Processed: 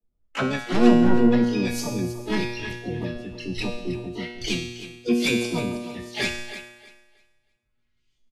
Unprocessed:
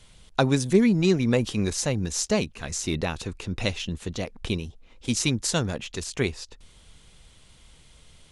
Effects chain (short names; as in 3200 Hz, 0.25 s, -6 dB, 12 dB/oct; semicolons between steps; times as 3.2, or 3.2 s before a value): de-esser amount 40%; Chebyshev low-pass 9000 Hz, order 6; spectral noise reduction 28 dB; band shelf 660 Hz -9.5 dB; comb 4.7 ms, depth 84%; LFO low-pass saw up 1.1 Hz 430–3600 Hz; in parallel at -8 dB: sine folder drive 13 dB, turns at -4.5 dBFS; on the sum: harmoniser -7 st -17 dB, +7 st -5 dB, +12 st -7 dB; resonator 120 Hz, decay 1 s, harmonics all, mix 90%; thinning echo 0.317 s, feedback 24%, high-pass 230 Hz, level -12 dB; on a send at -21.5 dB: reverb RT60 0.75 s, pre-delay 3 ms; on the sum: gain +4 dB; Vorbis 48 kbps 32000 Hz